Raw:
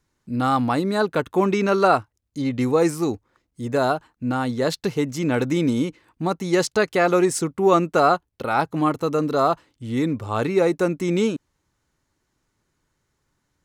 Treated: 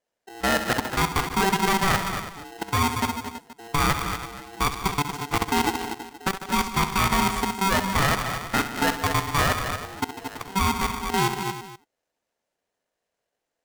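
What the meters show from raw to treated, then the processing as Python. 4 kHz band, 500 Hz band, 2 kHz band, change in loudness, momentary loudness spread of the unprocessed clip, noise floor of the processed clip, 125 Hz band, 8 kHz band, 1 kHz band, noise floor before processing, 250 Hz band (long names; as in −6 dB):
+6.0 dB, −11.0 dB, +3.0 dB, −3.0 dB, 8 LU, −83 dBFS, −1.5 dB, +4.0 dB, −0.5 dB, −74 dBFS, −7.0 dB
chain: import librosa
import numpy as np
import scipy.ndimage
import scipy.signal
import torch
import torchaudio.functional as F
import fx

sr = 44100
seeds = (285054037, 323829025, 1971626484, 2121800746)

y = fx.peak_eq(x, sr, hz=270.0, db=-3.5, octaves=0.29)
y = fx.level_steps(y, sr, step_db=21)
y = fx.echo_multitap(y, sr, ms=(66, 149, 221, 234, 329, 476), db=(-10.5, -13.0, -14.5, -9.0, -14.0, -20.0))
y = y * np.sign(np.sin(2.0 * np.pi * 580.0 * np.arange(len(y)) / sr))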